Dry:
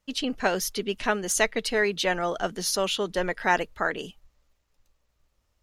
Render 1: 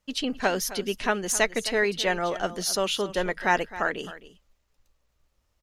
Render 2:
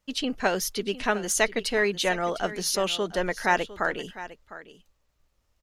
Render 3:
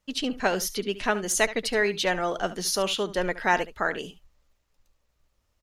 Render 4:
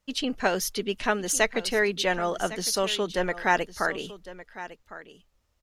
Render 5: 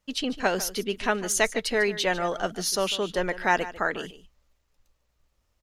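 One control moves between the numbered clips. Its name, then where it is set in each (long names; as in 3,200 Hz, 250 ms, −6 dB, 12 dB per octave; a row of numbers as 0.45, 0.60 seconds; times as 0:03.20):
single-tap delay, delay time: 263, 705, 72, 1,106, 148 milliseconds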